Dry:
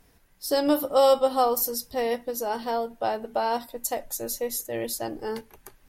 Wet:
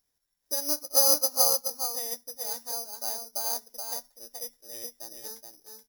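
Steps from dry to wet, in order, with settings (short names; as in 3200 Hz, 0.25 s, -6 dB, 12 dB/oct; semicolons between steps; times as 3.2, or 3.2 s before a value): low shelf 410 Hz -7.5 dB; echo 0.426 s -3.5 dB; careless resampling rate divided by 8×, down filtered, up zero stuff; upward expander 1.5:1, over -34 dBFS; gain -9 dB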